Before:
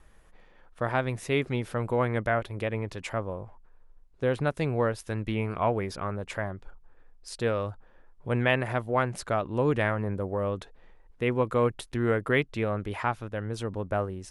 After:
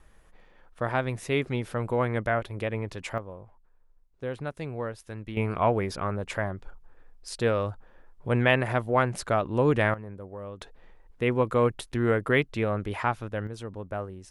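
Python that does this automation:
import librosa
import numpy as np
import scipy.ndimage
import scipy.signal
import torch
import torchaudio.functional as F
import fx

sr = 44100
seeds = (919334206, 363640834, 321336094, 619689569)

y = fx.gain(x, sr, db=fx.steps((0.0, 0.0), (3.18, -7.0), (5.37, 2.5), (9.94, -10.0), (10.61, 1.5), (13.47, -5.0)))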